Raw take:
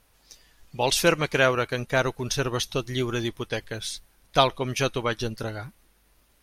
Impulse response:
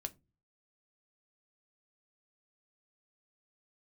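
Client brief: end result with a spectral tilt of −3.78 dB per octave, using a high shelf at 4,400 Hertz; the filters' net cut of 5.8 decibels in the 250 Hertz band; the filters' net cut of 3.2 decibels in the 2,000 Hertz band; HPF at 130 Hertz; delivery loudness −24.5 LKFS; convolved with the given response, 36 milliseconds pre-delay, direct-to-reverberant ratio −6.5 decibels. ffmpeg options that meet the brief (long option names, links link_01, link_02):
-filter_complex "[0:a]highpass=130,equalizer=frequency=250:width_type=o:gain=-8,equalizer=frequency=2000:width_type=o:gain=-5.5,highshelf=frequency=4400:gain=5,asplit=2[link_01][link_02];[1:a]atrim=start_sample=2205,adelay=36[link_03];[link_02][link_03]afir=irnorm=-1:irlink=0,volume=9dB[link_04];[link_01][link_04]amix=inputs=2:normalize=0,volume=-5.5dB"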